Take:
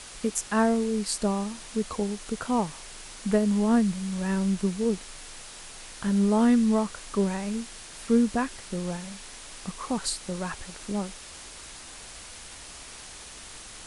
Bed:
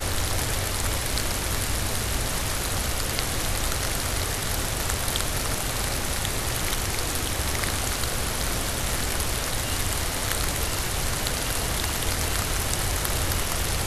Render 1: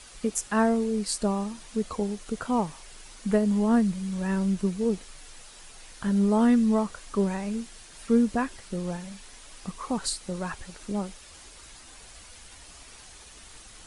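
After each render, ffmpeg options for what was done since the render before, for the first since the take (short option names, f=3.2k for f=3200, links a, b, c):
-af "afftdn=nr=7:nf=-44"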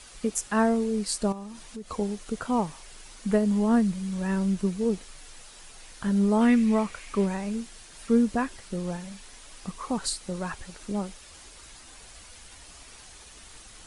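-filter_complex "[0:a]asettb=1/sr,asplit=3[a][b][c];[a]atrim=end=1.324[d];[b]atrim=start=1.32:end=1.9,asetpts=PTS-STARTPTS,afade=t=in:d=0.004:c=qsin,afade=t=out:st=0.576:d=0.004:c=qsin,acompressor=threshold=-38dB:ratio=3:attack=3.2:release=140:knee=1:detection=peak[e];[c]atrim=start=1.896[f];[d][e]acrossfade=d=0.004:c1=hsin:c2=qsin[g];[g][f]acrossfade=d=0.004:c1=qsin:c2=hsin,asettb=1/sr,asplit=3[h][i][j];[h]atrim=end=6.414[k];[i]atrim=start=6.41:end=7.26,asetpts=PTS-STARTPTS,afade=t=in:d=0.004:c=qsin,afade=t=out:st=0.846:d=0.004:c=qsin,equalizer=f=2.3k:t=o:w=0.56:g=12[l];[j]atrim=start=7.256[m];[k][l]acrossfade=d=0.004:c1=hsin:c2=qsin[n];[n][m]acrossfade=d=0.004:c1=qsin:c2=hsin"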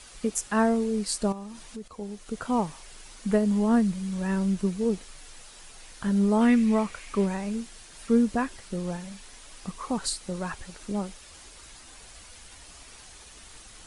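-filter_complex "[0:a]asplit=2[a][b];[a]atrim=end=1.88,asetpts=PTS-STARTPTS,afade=t=out:st=1.876:d=0.004:c=hsin:silence=0.211349[c];[b]atrim=start=1.88,asetpts=PTS-STARTPTS,afade=t=in:d=0.63:silence=0.211349[d];[c][d]concat=n=2:v=0:a=1"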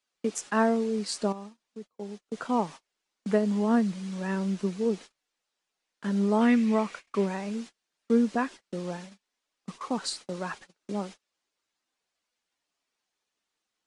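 -filter_complex "[0:a]agate=range=-33dB:threshold=-38dB:ratio=16:detection=peak,acrossover=split=170 7500:gain=0.0631 1 0.126[a][b][c];[a][b][c]amix=inputs=3:normalize=0"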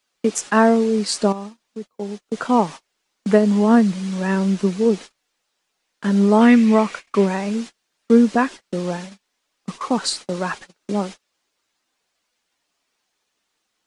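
-af "volume=10dB,alimiter=limit=-2dB:level=0:latency=1"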